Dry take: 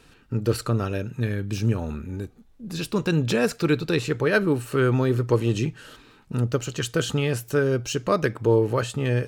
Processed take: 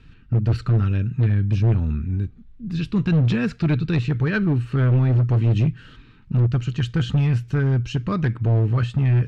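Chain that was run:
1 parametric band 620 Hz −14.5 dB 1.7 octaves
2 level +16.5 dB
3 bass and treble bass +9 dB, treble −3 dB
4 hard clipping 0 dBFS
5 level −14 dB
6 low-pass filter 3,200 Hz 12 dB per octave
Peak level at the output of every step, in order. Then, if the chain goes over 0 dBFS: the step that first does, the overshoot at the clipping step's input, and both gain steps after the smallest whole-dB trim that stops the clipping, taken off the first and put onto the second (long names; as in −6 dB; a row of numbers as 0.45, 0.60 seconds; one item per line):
−12.0, +4.5, +9.0, 0.0, −14.0, −13.5 dBFS
step 2, 9.0 dB
step 2 +7.5 dB, step 5 −5 dB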